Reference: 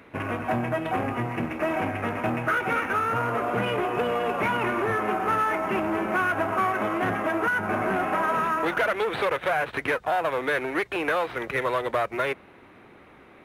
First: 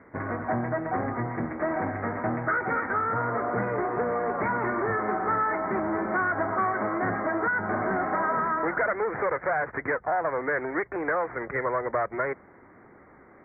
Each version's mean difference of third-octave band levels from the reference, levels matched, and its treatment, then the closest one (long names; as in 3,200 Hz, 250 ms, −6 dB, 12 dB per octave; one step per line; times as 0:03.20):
7.0 dB: Butterworth low-pass 2,100 Hz 96 dB per octave
level −1.5 dB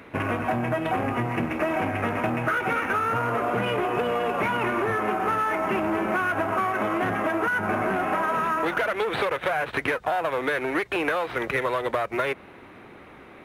1.5 dB: downward compressor, threshold −26 dBFS, peak gain reduction 6.5 dB
level +4.5 dB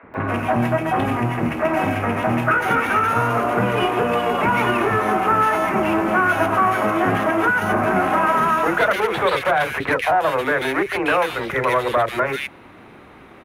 3.0 dB: three-band delay without the direct sound mids, lows, highs 30/140 ms, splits 450/2,000 Hz
level +8.5 dB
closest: second